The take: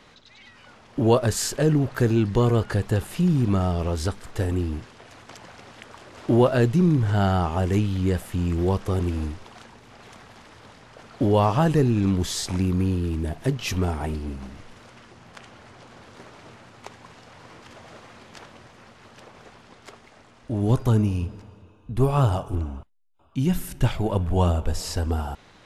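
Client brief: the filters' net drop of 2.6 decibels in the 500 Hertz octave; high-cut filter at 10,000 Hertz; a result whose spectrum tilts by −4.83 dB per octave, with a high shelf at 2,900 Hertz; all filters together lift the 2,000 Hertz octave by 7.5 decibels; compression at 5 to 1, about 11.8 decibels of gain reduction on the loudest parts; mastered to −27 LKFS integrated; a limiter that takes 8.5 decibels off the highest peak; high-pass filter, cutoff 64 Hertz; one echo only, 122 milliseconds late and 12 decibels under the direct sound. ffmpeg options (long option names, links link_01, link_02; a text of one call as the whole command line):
ffmpeg -i in.wav -af "highpass=64,lowpass=10000,equalizer=frequency=500:width_type=o:gain=-4,equalizer=frequency=2000:width_type=o:gain=7.5,highshelf=frequency=2900:gain=7.5,acompressor=threshold=-29dB:ratio=5,alimiter=limit=-23.5dB:level=0:latency=1,aecho=1:1:122:0.251,volume=8dB" out.wav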